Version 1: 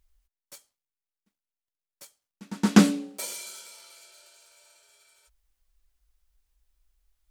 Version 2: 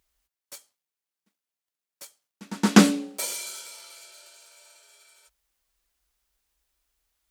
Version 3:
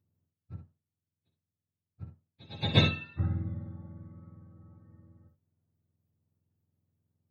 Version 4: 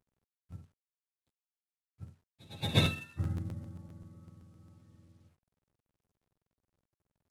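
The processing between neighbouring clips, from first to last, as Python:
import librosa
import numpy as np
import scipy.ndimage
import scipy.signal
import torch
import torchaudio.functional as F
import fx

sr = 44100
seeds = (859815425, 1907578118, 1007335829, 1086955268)

y1 = fx.highpass(x, sr, hz=240.0, slope=6)
y1 = y1 * 10.0 ** (4.5 / 20.0)
y2 = fx.octave_mirror(y1, sr, pivot_hz=870.0)
y2 = fx.room_early_taps(y2, sr, ms=(59, 73), db=(-8.0, -15.5))
y2 = y2 * 10.0 ** (-7.5 / 20.0)
y3 = fx.cvsd(y2, sr, bps=64000)
y3 = fx.buffer_crackle(y3, sr, first_s=0.5, period_s=0.13, block=512, kind='repeat')
y3 = y3 * 10.0 ** (-3.5 / 20.0)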